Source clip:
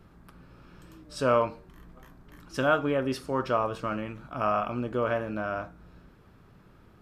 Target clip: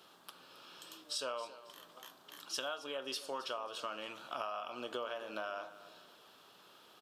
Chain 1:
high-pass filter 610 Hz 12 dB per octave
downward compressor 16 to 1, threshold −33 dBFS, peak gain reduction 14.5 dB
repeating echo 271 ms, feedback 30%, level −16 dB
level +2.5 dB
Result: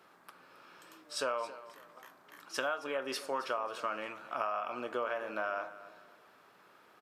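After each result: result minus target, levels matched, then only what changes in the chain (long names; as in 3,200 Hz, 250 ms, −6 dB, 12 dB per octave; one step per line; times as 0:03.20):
4,000 Hz band −7.5 dB; downward compressor: peak gain reduction −5 dB
add after high-pass filter: high shelf with overshoot 2,600 Hz +6 dB, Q 3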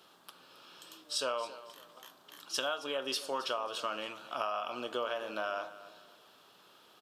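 downward compressor: peak gain reduction −5.5 dB
change: downward compressor 16 to 1, threshold −39 dBFS, peak gain reduction 19.5 dB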